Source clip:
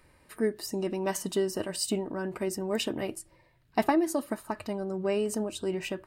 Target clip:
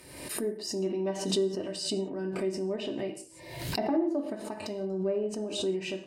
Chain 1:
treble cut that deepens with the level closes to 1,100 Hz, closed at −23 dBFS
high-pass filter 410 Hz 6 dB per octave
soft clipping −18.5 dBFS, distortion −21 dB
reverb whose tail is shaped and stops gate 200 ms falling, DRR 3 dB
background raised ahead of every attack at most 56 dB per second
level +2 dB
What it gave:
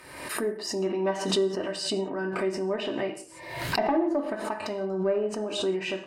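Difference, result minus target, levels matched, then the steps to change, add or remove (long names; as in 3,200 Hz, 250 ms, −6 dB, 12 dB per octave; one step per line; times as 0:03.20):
1,000 Hz band +5.0 dB
add after high-pass filter: parametric band 1,300 Hz −14 dB 1.9 octaves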